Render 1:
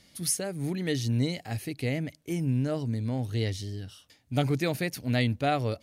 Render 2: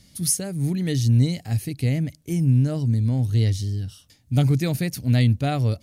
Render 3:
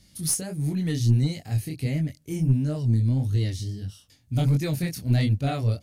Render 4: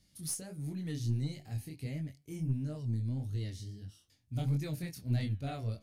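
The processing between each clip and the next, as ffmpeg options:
-af "bass=f=250:g=13,treble=f=4k:g=8,volume=-1.5dB"
-af "flanger=delay=19.5:depth=7.2:speed=1.5,aeval=exprs='0.316*(cos(1*acos(clip(val(0)/0.316,-1,1)))-cos(1*PI/2))+0.0631*(cos(2*acos(clip(val(0)/0.316,-1,1)))-cos(2*PI/2))+0.00316*(cos(8*acos(clip(val(0)/0.316,-1,1)))-cos(8*PI/2))':c=same"
-af "flanger=delay=6.6:depth=7.7:regen=87:speed=0.42:shape=sinusoidal,volume=-7.5dB"

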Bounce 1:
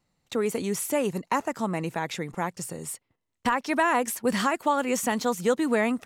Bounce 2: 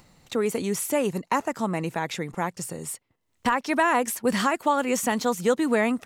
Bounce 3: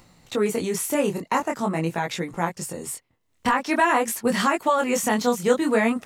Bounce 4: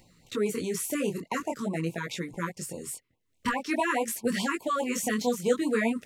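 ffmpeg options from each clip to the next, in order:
-af "acompressor=mode=upward:threshold=-44dB:ratio=2.5,volume=1.5dB"
-af "flanger=delay=17:depth=7.7:speed=0.46,volume=5dB"
-af "afftfilt=real='re*(1-between(b*sr/1024,650*pow(1600/650,0.5+0.5*sin(2*PI*4.8*pts/sr))/1.41,650*pow(1600/650,0.5+0.5*sin(2*PI*4.8*pts/sr))*1.41))':imag='im*(1-between(b*sr/1024,650*pow(1600/650,0.5+0.5*sin(2*PI*4.8*pts/sr))/1.41,650*pow(1600/650,0.5+0.5*sin(2*PI*4.8*pts/sr))*1.41))':win_size=1024:overlap=0.75,volume=-5dB"

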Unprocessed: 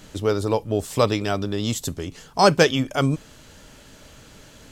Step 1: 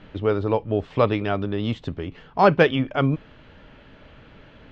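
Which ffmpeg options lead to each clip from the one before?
-af "lowpass=f=3k:w=0.5412,lowpass=f=3k:w=1.3066"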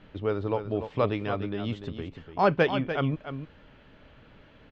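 -af "aecho=1:1:294:0.335,volume=-6.5dB"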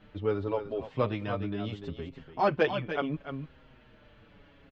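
-filter_complex "[0:a]asplit=2[a][b];[b]adelay=6.3,afreqshift=-0.74[c];[a][c]amix=inputs=2:normalize=1"

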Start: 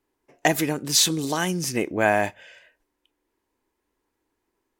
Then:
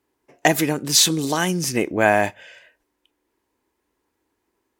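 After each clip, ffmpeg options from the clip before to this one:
-af "highpass=43,volume=3.5dB"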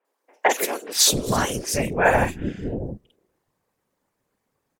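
-filter_complex "[0:a]aeval=exprs='val(0)*sin(2*PI*110*n/s)':c=same,afftfilt=real='hypot(re,im)*cos(2*PI*random(0))':imag='hypot(re,im)*sin(2*PI*random(1))':win_size=512:overlap=0.75,acrossover=split=350|2800[a][b][c];[c]adelay=50[d];[a]adelay=670[e];[e][b][d]amix=inputs=3:normalize=0,volume=8.5dB"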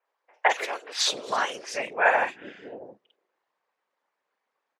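-af "highpass=720,lowpass=3.5k"

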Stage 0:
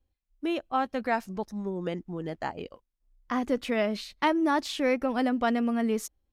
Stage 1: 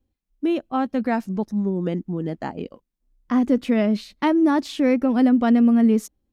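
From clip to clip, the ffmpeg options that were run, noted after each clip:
-af "equalizer=f=220:t=o:w=1.8:g=12"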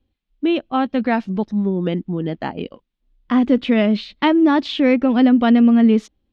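-af "lowpass=f=3.4k:t=q:w=2.2,volume=3.5dB"

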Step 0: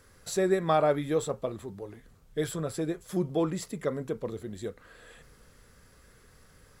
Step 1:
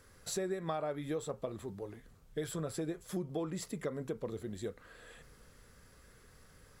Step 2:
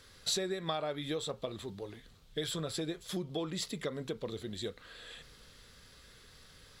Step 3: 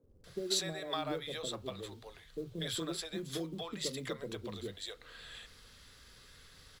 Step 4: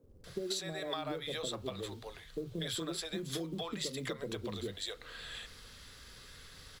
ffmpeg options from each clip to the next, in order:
-af "acompressor=threshold=-31dB:ratio=6,volume=-2.5dB"
-af "equalizer=f=3.7k:w=1.2:g=14.5"
-filter_complex "[0:a]acrossover=split=170|540[a][b][c];[a]adelay=30[d];[c]adelay=240[e];[d][b][e]amix=inputs=3:normalize=0,acrusher=bits=8:mode=log:mix=0:aa=0.000001"
-af "acompressor=threshold=-39dB:ratio=6,volume=4.5dB"

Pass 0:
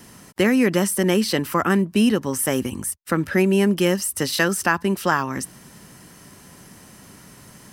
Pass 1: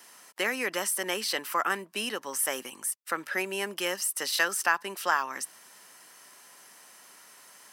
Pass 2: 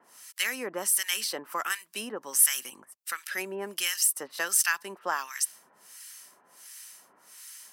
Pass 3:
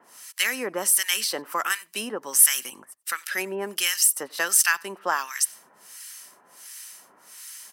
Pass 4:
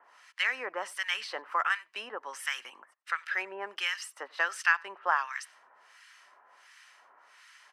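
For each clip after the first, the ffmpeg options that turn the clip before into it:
-af "highpass=720,volume=-4dB"
-filter_complex "[0:a]acrossover=split=1300[a][b];[a]aeval=exprs='val(0)*(1-1/2+1/2*cos(2*PI*1.4*n/s))':c=same[c];[b]aeval=exprs='val(0)*(1-1/2-1/2*cos(2*PI*1.4*n/s))':c=same[d];[c][d]amix=inputs=2:normalize=0,highshelf=f=3.4k:g=10.5"
-filter_complex "[0:a]asplit=2[a][b];[b]adelay=93.29,volume=-27dB,highshelf=f=4k:g=-2.1[c];[a][c]amix=inputs=2:normalize=0,volume=5dB"
-af "highpass=790,lowpass=2.1k"

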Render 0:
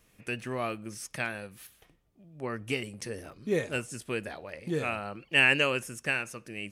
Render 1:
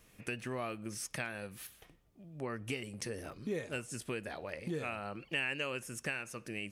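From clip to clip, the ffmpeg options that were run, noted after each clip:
-af "acompressor=threshold=-39dB:ratio=3,volume=1.5dB"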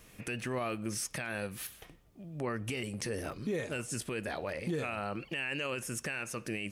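-af "alimiter=level_in=9dB:limit=-24dB:level=0:latency=1:release=13,volume=-9dB,volume=6.5dB"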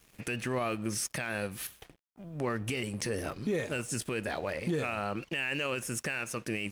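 -af "aeval=exprs='sgn(val(0))*max(abs(val(0))-0.0015,0)':c=same,volume=3.5dB"

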